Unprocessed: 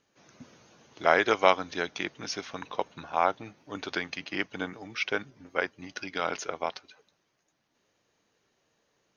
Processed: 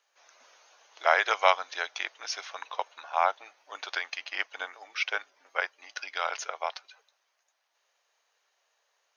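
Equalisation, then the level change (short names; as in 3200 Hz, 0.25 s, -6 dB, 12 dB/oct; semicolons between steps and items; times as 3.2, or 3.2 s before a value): HPF 630 Hz 24 dB/oct; +1.0 dB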